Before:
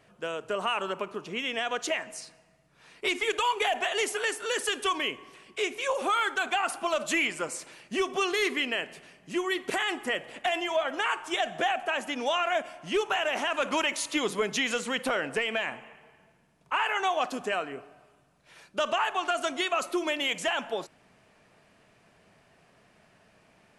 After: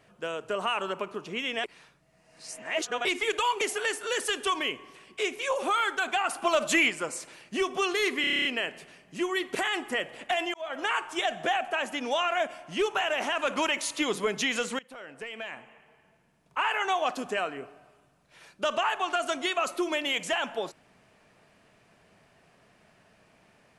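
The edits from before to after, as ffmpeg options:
-filter_complex "[0:a]asplit=16[s0][s1][s2][s3][s4][s5][s6][s7][s8][s9][s10][s11][s12][s13][s14][s15];[s0]atrim=end=1.642[s16];[s1]atrim=start=1.638:end=3.052,asetpts=PTS-STARTPTS,areverse[s17];[s2]atrim=start=3.048:end=3.612[s18];[s3]atrim=start=3.998:end=6.812[s19];[s4]atrim=start=6.808:end=7.292,asetpts=PTS-STARTPTS,volume=1.5[s20];[s5]atrim=start=7.288:end=8.632[s21];[s6]atrim=start=8.598:end=8.632[s22];[s7]atrim=start=8.598:end=8.632[s23];[s8]atrim=start=8.598:end=8.632[s24];[s9]atrim=start=8.598:end=8.632[s25];[s10]atrim=start=8.598:end=8.632[s26];[s11]atrim=start=8.598:end=8.632[s27];[s12]atrim=start=8.598:end=8.632[s28];[s13]atrim=start=8.598:end=10.69,asetpts=PTS-STARTPTS,afade=t=out:st=2.088:d=0.004:c=hsin[s29];[s14]atrim=start=10.69:end=14.94,asetpts=PTS-STARTPTS,afade=t=in:d=0.29,afade=t=out:st=4.246:d=0.004:c=hsin:silence=0.0630957[s30];[s15]atrim=start=14.94,asetpts=PTS-STARTPTS,afade=t=in:d=1.87:silence=0.0630957[s31];[s16][s17]acrossfade=d=0.004:c1=hsin:c2=hsin[s32];[s32][s18]acrossfade=d=0.004:c1=hsin:c2=hsin[s33];[s33][s19]acrossfade=d=0.004:c1=hsin:c2=hsin[s34];[s34][s20]acrossfade=d=0.004:c1=hsin:c2=hsin[s35];[s35][s21]acrossfade=d=0.004:c1=hsin:c2=hsin[s36];[s36][s22]acrossfade=d=0.004:c1=hsin:c2=hsin[s37];[s37][s23]acrossfade=d=0.004:c1=hsin:c2=hsin[s38];[s38][s24]acrossfade=d=0.004:c1=hsin:c2=hsin[s39];[s39][s25]acrossfade=d=0.004:c1=hsin:c2=hsin[s40];[s40][s26]acrossfade=d=0.004:c1=hsin:c2=hsin[s41];[s41][s27]acrossfade=d=0.004:c1=hsin:c2=hsin[s42];[s42][s28]acrossfade=d=0.004:c1=hsin:c2=hsin[s43];[s29][s30][s31]concat=n=3:v=0:a=1[s44];[s43][s44]acrossfade=d=0.004:c1=hsin:c2=hsin"

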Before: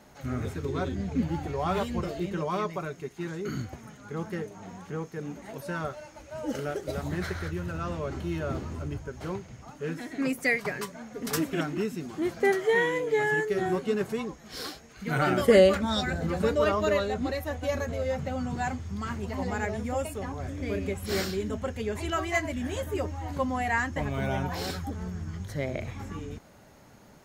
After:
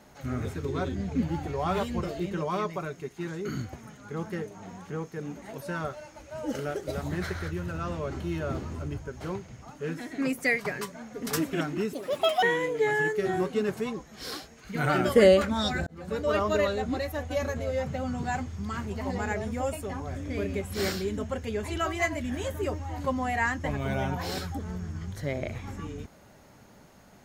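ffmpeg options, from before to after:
-filter_complex "[0:a]asplit=4[s0][s1][s2][s3];[s0]atrim=end=11.934[s4];[s1]atrim=start=11.93:end=12.75,asetpts=PTS-STARTPTS,asetrate=72765,aresample=44100,atrim=end_sample=21916,asetpts=PTS-STARTPTS[s5];[s2]atrim=start=12.746:end=16.19,asetpts=PTS-STARTPTS,afade=t=out:st=3.44:d=0.004:c=hsin[s6];[s3]atrim=start=16.19,asetpts=PTS-STARTPTS,afade=t=in:d=0.56[s7];[s4][s5]acrossfade=d=0.004:c1=hsin:c2=hsin[s8];[s6][s7]concat=n=2:v=0:a=1[s9];[s8][s9]acrossfade=d=0.004:c1=hsin:c2=hsin"

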